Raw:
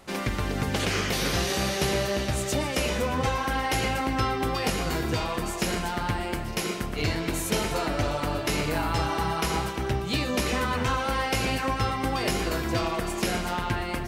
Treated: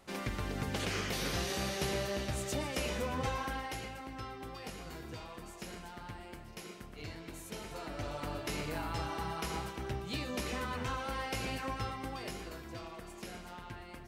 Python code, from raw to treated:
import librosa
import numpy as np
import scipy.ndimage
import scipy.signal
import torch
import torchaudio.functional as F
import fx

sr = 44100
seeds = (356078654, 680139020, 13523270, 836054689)

y = fx.gain(x, sr, db=fx.line((3.42, -9.0), (3.92, -18.0), (7.57, -18.0), (8.25, -11.0), (11.77, -11.0), (12.64, -18.5)))